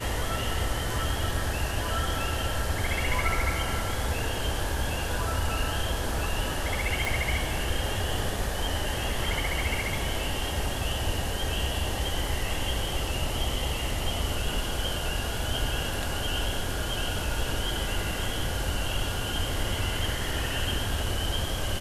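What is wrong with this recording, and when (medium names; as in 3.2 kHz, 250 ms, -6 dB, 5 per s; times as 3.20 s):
7.05 s: pop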